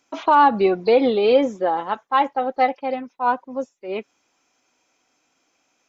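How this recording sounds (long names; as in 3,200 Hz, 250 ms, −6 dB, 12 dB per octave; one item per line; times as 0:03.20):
background noise floor −69 dBFS
spectral slope −3.0 dB per octave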